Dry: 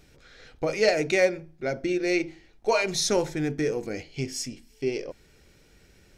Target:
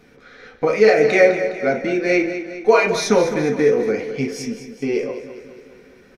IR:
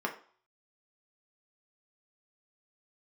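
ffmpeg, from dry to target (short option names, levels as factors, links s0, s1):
-filter_complex "[0:a]aecho=1:1:206|412|618|824|1030|1236:0.266|0.146|0.0805|0.0443|0.0243|0.0134[s0];[1:a]atrim=start_sample=2205,asetrate=48510,aresample=44100[s1];[s0][s1]afir=irnorm=-1:irlink=0,alimiter=level_in=1.68:limit=0.891:release=50:level=0:latency=1,volume=0.891"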